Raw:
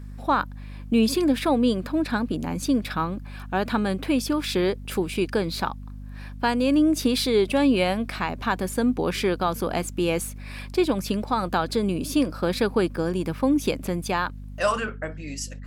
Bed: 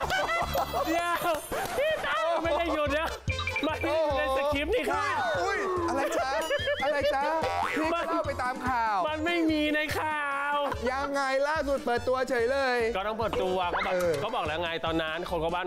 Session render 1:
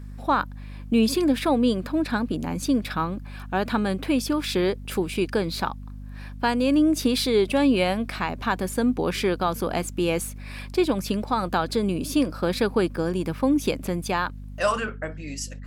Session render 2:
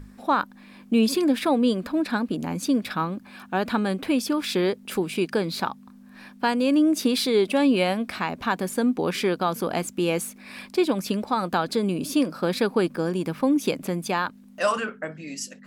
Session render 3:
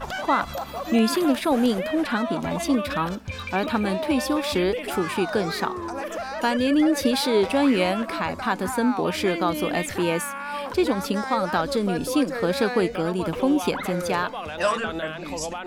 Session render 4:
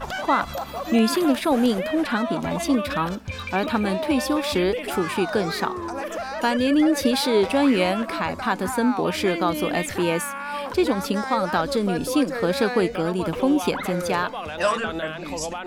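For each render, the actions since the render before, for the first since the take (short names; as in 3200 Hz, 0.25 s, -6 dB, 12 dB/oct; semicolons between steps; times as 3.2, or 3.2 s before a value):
nothing audible
notches 50/100/150 Hz
add bed -3 dB
gain +1 dB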